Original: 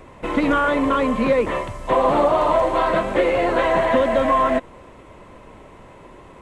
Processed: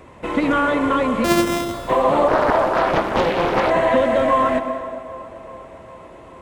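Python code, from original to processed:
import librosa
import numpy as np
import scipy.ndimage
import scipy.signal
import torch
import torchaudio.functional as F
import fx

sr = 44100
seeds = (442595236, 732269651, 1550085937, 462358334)

y = fx.sample_sort(x, sr, block=128, at=(1.24, 1.74))
y = scipy.signal.sosfilt(scipy.signal.butter(2, 45.0, 'highpass', fs=sr, output='sos'), y)
y = fx.echo_wet_bandpass(y, sr, ms=393, feedback_pct=65, hz=700.0, wet_db=-17.0)
y = fx.rev_plate(y, sr, seeds[0], rt60_s=1.5, hf_ratio=0.85, predelay_ms=110, drr_db=8.5)
y = fx.doppler_dist(y, sr, depth_ms=0.83, at=(2.28, 3.7))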